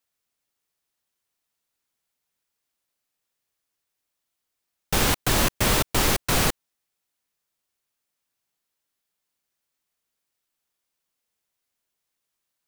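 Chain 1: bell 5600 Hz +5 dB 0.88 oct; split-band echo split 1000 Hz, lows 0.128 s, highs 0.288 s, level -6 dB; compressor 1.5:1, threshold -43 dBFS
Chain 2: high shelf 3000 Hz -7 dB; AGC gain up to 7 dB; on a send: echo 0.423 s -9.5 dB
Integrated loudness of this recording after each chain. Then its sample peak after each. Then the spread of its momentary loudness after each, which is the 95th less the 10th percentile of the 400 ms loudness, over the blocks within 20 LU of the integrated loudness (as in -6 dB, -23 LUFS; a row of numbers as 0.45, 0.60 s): -30.0, -19.0 LUFS; -16.0, -3.5 dBFS; 16, 11 LU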